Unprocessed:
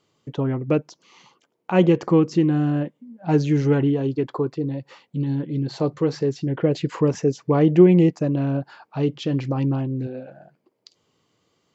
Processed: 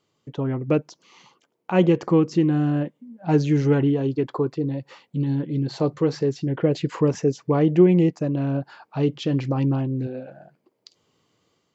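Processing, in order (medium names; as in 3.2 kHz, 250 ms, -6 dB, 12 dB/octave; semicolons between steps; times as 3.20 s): level rider gain up to 4.5 dB; trim -4 dB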